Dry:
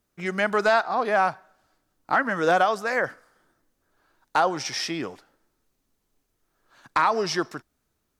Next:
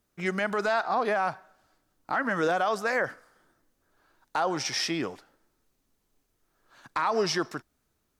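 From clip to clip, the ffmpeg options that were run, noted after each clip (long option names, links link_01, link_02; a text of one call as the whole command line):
ffmpeg -i in.wav -af "alimiter=limit=-17dB:level=0:latency=1:release=54" out.wav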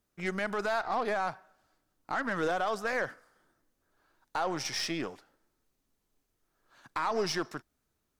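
ffmpeg -i in.wav -af "aeval=exprs='0.15*(cos(1*acos(clip(val(0)/0.15,-1,1)))-cos(1*PI/2))+0.00841*(cos(6*acos(clip(val(0)/0.15,-1,1)))-cos(6*PI/2))':channel_layout=same,volume=-4.5dB" out.wav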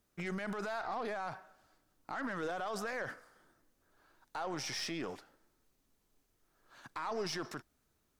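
ffmpeg -i in.wav -af "alimiter=level_in=8.5dB:limit=-24dB:level=0:latency=1:release=27,volume=-8.5dB,volume=2.5dB" out.wav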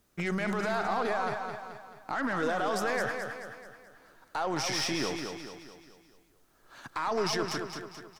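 ffmpeg -i in.wav -af "aecho=1:1:216|432|648|864|1080|1296:0.501|0.241|0.115|0.0554|0.0266|0.0128,volume=7.5dB" out.wav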